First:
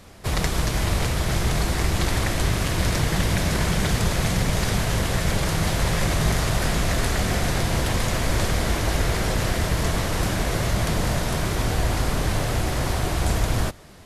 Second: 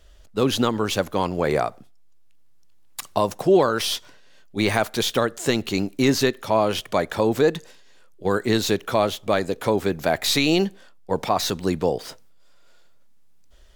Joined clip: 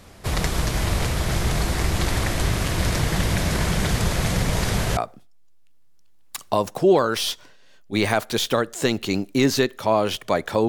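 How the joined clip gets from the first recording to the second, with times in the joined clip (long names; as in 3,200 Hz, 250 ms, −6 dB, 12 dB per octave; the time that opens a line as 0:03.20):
first
0:04.32: mix in second from 0:00.96 0.65 s −16 dB
0:04.97: continue with second from 0:01.61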